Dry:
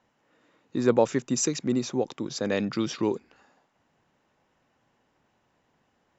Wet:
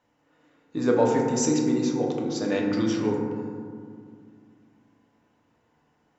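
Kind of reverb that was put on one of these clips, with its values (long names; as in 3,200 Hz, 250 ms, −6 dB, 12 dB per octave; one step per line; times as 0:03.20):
feedback delay network reverb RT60 2.1 s, low-frequency decay 1.45×, high-frequency decay 0.3×, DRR −2 dB
level −3 dB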